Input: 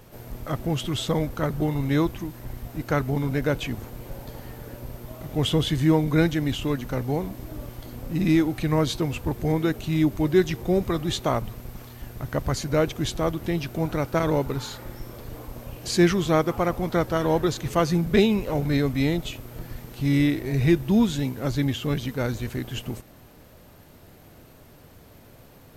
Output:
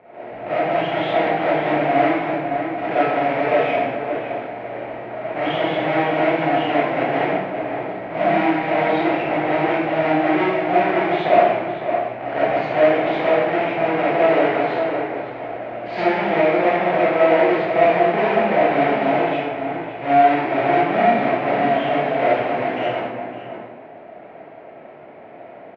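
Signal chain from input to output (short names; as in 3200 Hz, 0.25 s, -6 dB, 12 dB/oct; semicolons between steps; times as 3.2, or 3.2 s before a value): half-waves squared off; compressor, threshold -21 dBFS, peak gain reduction 10 dB; speaker cabinet 330–2500 Hz, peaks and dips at 700 Hz +10 dB, 1200 Hz -6 dB, 2200 Hz +6 dB; outdoor echo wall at 96 m, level -6 dB; reverb RT60 0.95 s, pre-delay 10 ms, DRR -9.5 dB; mismatched tape noise reduction decoder only; gain -2.5 dB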